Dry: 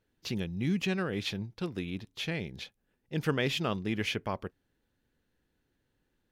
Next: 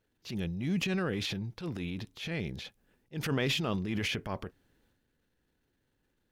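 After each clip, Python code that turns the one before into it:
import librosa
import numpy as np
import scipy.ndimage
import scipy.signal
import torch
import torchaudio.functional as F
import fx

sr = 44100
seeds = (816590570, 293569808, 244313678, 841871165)

y = fx.transient(x, sr, attack_db=-9, sustain_db=7)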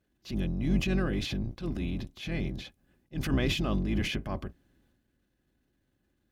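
y = fx.octave_divider(x, sr, octaves=2, level_db=4.0)
y = fx.peak_eq(y, sr, hz=300.0, db=3.5, octaves=1.5)
y = fx.notch_comb(y, sr, f0_hz=460.0)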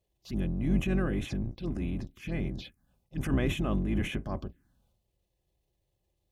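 y = fx.env_phaser(x, sr, low_hz=250.0, high_hz=4700.0, full_db=-28.5)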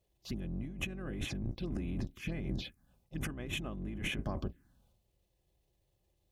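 y = fx.over_compress(x, sr, threshold_db=-35.0, ratio=-1.0)
y = y * 10.0 ** (-3.0 / 20.0)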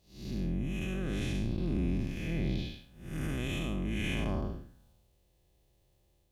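y = fx.spec_blur(x, sr, span_ms=239.0)
y = y * 10.0 ** (8.0 / 20.0)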